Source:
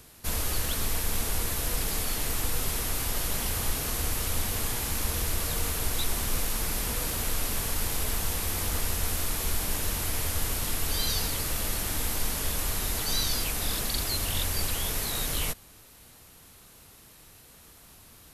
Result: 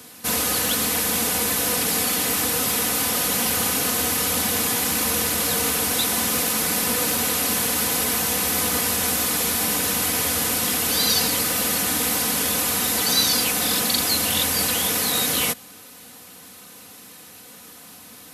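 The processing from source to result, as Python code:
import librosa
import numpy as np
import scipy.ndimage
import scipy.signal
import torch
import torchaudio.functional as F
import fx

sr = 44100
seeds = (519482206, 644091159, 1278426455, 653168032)

y = scipy.signal.sosfilt(scipy.signal.butter(4, 110.0, 'highpass', fs=sr, output='sos'), x)
y = y + 0.61 * np.pad(y, (int(4.0 * sr / 1000.0), 0))[:len(y)]
y = y * librosa.db_to_amplitude(8.5)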